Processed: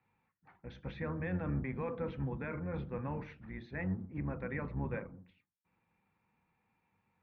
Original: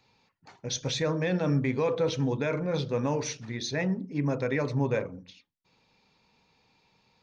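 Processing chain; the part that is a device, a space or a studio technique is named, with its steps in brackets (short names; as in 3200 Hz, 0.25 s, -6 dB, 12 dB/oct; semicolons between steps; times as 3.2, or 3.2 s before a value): sub-octave bass pedal (octaver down 1 oct, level 0 dB; speaker cabinet 62–2100 Hz, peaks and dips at 76 Hz -10 dB, 120 Hz -7 dB, 270 Hz -6 dB, 420 Hz -9 dB, 610 Hz -8 dB, 950 Hz -3 dB); gain -6.5 dB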